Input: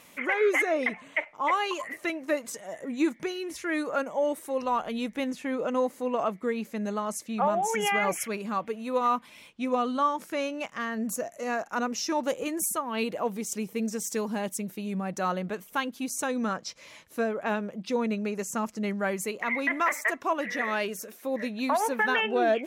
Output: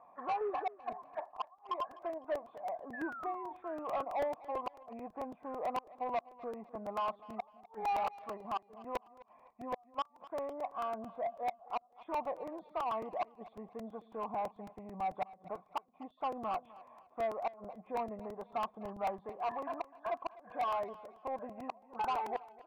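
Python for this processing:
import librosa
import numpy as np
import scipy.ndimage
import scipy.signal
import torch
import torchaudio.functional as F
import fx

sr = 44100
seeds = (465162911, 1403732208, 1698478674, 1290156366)

p1 = fx.freq_compress(x, sr, knee_hz=1200.0, ratio=1.5)
p2 = fx.lowpass(p1, sr, hz=3200.0, slope=6)
p3 = fx.level_steps(p2, sr, step_db=12)
p4 = p2 + (p3 * librosa.db_to_amplitude(-0.5))
p5 = fx.formant_cascade(p4, sr, vowel='a')
p6 = fx.gate_flip(p5, sr, shuts_db=-27.0, range_db=-41)
p7 = 10.0 ** (-36.0 / 20.0) * np.tanh(p6 / 10.0 ** (-36.0 / 20.0))
p8 = fx.echo_feedback(p7, sr, ms=252, feedback_pct=31, wet_db=-19)
p9 = fx.spec_paint(p8, sr, seeds[0], shape='fall', start_s=2.93, length_s=0.6, low_hz=890.0, high_hz=1800.0, level_db=-52.0)
p10 = fx.buffer_crackle(p9, sr, first_s=0.92, period_s=0.11, block=128, kind='repeat')
y = p10 * librosa.db_to_amplitude(7.0)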